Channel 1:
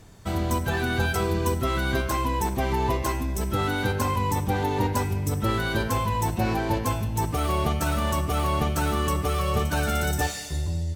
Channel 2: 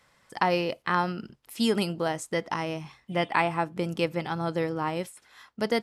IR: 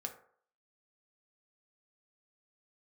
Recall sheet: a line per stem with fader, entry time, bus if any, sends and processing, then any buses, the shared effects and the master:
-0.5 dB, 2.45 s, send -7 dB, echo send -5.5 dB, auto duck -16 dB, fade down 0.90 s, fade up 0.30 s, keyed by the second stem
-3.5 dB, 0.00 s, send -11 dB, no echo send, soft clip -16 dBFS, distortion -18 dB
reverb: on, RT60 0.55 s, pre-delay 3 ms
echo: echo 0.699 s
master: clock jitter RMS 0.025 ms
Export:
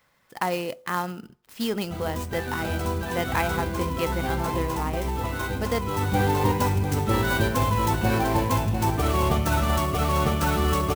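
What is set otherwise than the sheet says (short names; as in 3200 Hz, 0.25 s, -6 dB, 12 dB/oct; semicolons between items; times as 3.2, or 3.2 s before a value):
stem 1: entry 2.45 s -> 1.65 s; stem 2: missing soft clip -16 dBFS, distortion -18 dB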